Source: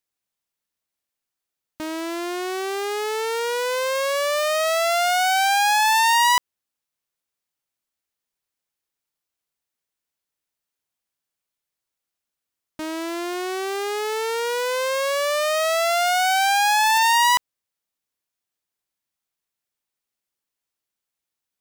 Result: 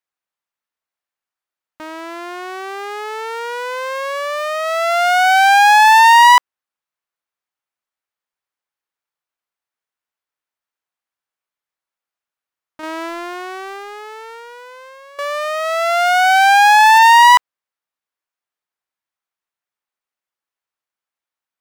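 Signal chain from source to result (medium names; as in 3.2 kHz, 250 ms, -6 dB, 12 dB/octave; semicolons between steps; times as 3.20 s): gate -20 dBFS, range -8 dB; peaking EQ 1.2 kHz +12.5 dB 2.8 oct; 12.83–15.19 s: compressor with a negative ratio -29 dBFS, ratio -0.5; trim -1 dB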